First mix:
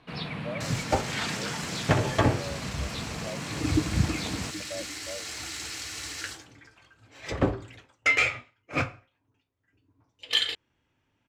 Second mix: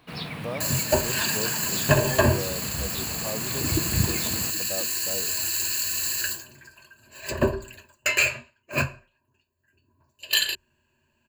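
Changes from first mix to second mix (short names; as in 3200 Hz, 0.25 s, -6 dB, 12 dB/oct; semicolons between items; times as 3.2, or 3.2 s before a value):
speech: remove band-pass 600 Hz, Q 6.4; second sound: add ripple EQ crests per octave 1.4, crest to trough 17 dB; master: remove air absorption 78 m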